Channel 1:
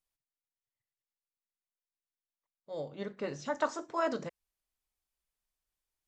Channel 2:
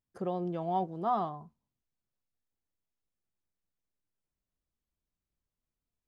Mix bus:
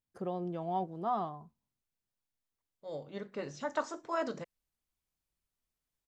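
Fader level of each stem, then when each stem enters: −2.5, −3.0 decibels; 0.15, 0.00 seconds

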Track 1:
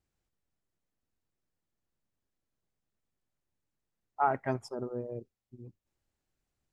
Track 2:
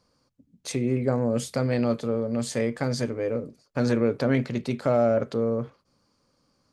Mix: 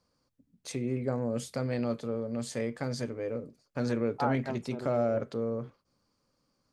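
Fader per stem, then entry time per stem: −4.0, −7.0 decibels; 0.00, 0.00 seconds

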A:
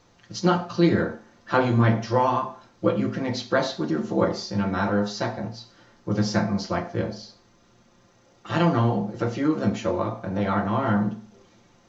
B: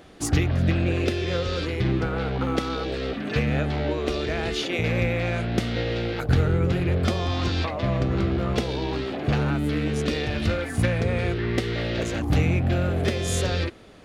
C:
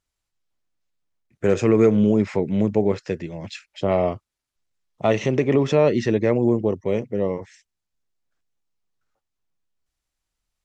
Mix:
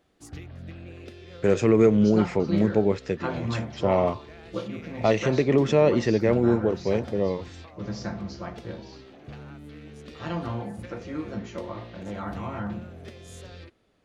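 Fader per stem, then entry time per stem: −10.5, −19.0, −2.0 decibels; 1.70, 0.00, 0.00 seconds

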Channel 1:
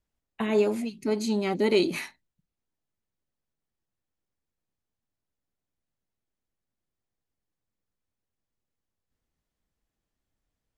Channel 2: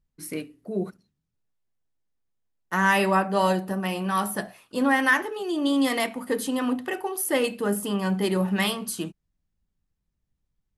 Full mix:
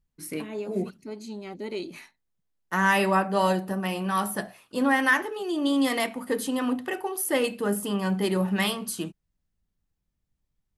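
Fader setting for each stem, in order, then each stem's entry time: −11.0, −1.0 decibels; 0.00, 0.00 seconds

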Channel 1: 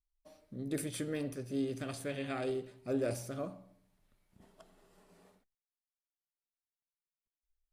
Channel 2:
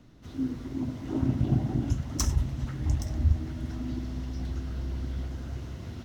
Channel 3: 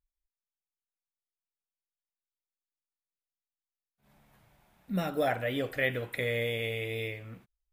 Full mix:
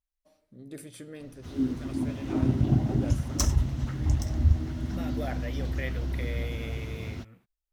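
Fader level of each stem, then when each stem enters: −6.0, +2.0, −8.0 decibels; 0.00, 1.20, 0.00 seconds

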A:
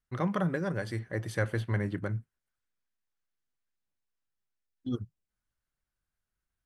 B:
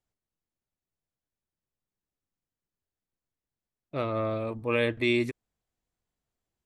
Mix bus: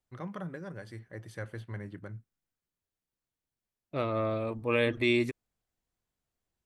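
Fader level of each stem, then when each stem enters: −10.0, −1.0 decibels; 0.00, 0.00 seconds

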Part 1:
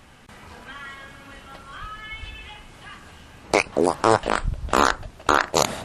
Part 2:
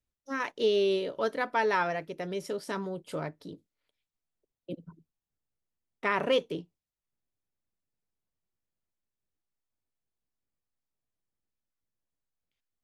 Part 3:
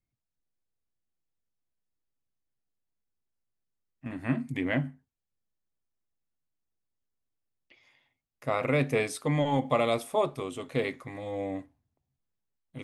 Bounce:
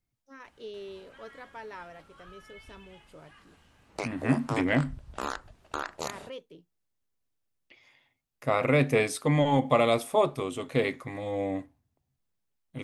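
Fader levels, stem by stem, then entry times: −16.0, −16.0, +3.0 decibels; 0.45, 0.00, 0.00 seconds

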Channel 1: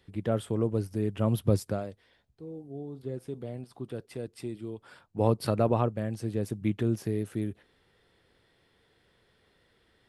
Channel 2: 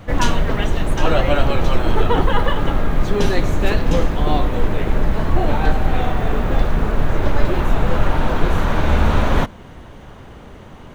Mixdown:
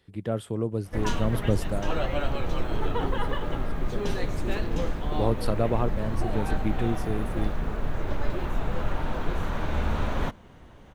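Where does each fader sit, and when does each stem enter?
−0.5, −11.5 decibels; 0.00, 0.85 seconds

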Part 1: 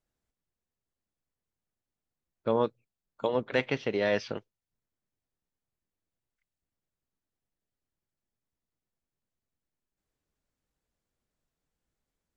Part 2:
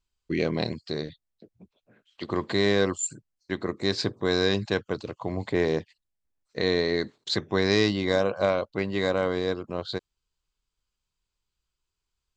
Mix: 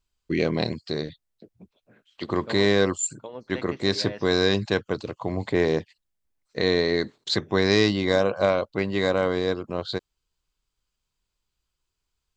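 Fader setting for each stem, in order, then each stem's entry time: −10.5, +2.5 decibels; 0.00, 0.00 seconds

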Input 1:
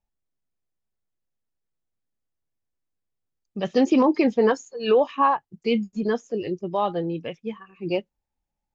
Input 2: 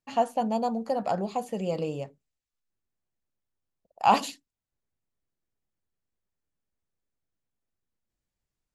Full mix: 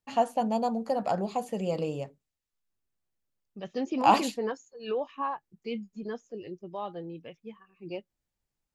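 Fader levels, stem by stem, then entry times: −12.5, −0.5 decibels; 0.00, 0.00 seconds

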